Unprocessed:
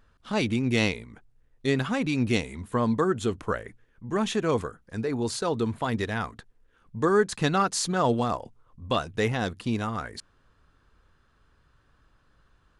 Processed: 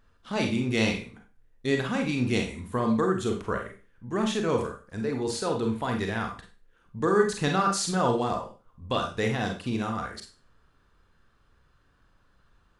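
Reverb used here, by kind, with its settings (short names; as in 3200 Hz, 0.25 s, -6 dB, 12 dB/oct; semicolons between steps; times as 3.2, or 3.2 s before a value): Schroeder reverb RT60 0.34 s, combs from 32 ms, DRR 2.5 dB; gain -2.5 dB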